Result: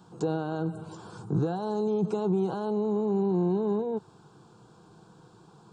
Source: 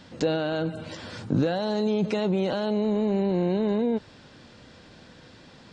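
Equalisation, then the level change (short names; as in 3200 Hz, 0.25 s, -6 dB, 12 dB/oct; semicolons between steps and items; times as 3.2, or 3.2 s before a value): HPF 55 Hz; band shelf 3600 Hz -11 dB; fixed phaser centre 380 Hz, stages 8; 0.0 dB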